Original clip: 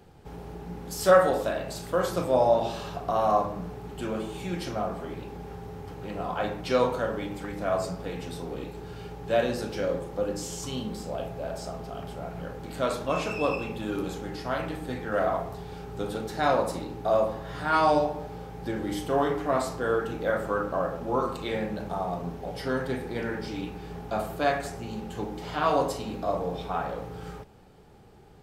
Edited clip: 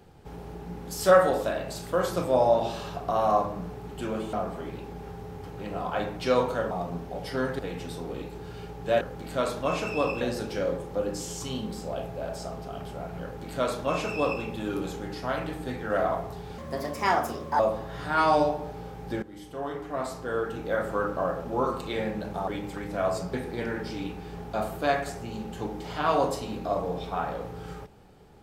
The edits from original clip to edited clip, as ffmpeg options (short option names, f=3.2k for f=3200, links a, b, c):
-filter_complex "[0:a]asplit=11[a][b][c][d][e][f][g][h][i][j][k];[a]atrim=end=4.332[l];[b]atrim=start=4.768:end=7.152[m];[c]atrim=start=22.028:end=22.912[n];[d]atrim=start=8.008:end=9.432[o];[e]atrim=start=12.448:end=13.652[p];[f]atrim=start=9.428:end=15.804[q];[g]atrim=start=15.8:end=17.15,asetpts=PTS-STARTPTS,asetrate=58653,aresample=44100,atrim=end_sample=44763,asetpts=PTS-STARTPTS[r];[h]atrim=start=17.146:end=18.78,asetpts=PTS-STARTPTS,afade=t=out:st=1.63:d=0.004:c=hsin:silence=0.149624[s];[i]atrim=start=18.78:end=22.032,asetpts=PTS-STARTPTS,afade=t=in:d=1.76:silence=0.149624[t];[j]atrim=start=7.148:end=8.012[u];[k]atrim=start=22.908[v];[l][m]acrossfade=d=0.004:c1=hsin:c2=hsin[w];[w][n]acrossfade=d=0.004:c1=hsin:c2=hsin[x];[x][o]acrossfade=d=0.004:c1=hsin:c2=hsin[y];[y][p]acrossfade=d=0.004:c1=hsin:c2=hsin[z];[z][q]acrossfade=d=0.004:c1=hsin:c2=hsin[aa];[aa][r]acrossfade=d=0.004:c1=hsin:c2=hsin[ab];[s][t]concat=n=2:v=0:a=1[ac];[ab][ac]acrossfade=d=0.004:c1=hsin:c2=hsin[ad];[ad][u]acrossfade=d=0.004:c1=hsin:c2=hsin[ae];[ae][v]acrossfade=d=0.004:c1=hsin:c2=hsin"